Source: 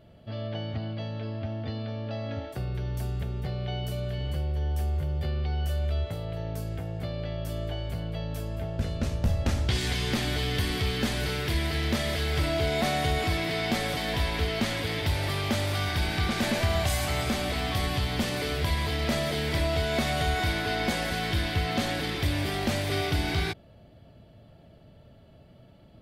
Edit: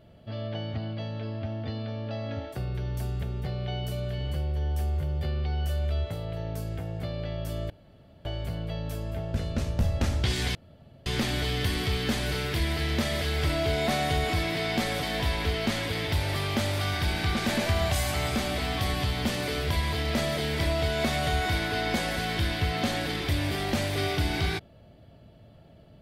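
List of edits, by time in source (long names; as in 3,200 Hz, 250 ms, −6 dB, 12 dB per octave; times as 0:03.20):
0:07.70: splice in room tone 0.55 s
0:10.00: splice in room tone 0.51 s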